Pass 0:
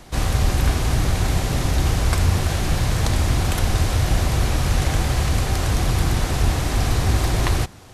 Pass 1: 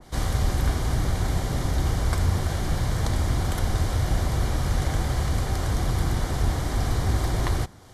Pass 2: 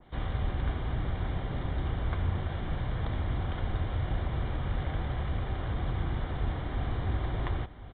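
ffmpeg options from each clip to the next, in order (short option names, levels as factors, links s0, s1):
-af "bandreject=f=2600:w=5.6,adynamicequalizer=threshold=0.00708:dfrequency=1800:dqfactor=0.7:tfrequency=1800:tqfactor=0.7:attack=5:release=100:ratio=0.375:range=1.5:mode=cutabove:tftype=highshelf,volume=0.596"
-af "aecho=1:1:1049:0.188,aresample=8000,aresample=44100,volume=0.422"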